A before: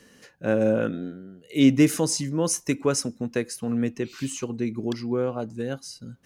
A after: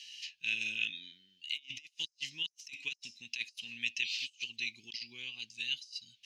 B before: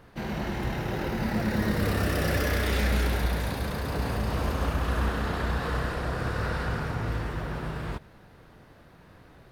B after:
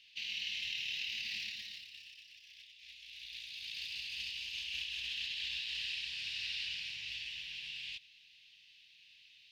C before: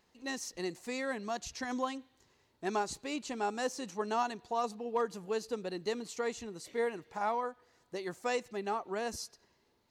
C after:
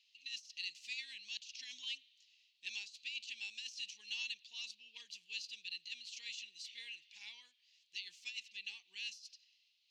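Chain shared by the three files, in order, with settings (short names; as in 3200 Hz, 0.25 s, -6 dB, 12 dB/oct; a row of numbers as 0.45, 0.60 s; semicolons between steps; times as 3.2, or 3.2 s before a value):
elliptic high-pass 2700 Hz, stop band 50 dB; high shelf 6700 Hz +2 dB; negative-ratio compressor -47 dBFS, ratio -0.5; air absorption 230 m; gain +11 dB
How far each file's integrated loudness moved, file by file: -12.5, -10.0, -8.0 LU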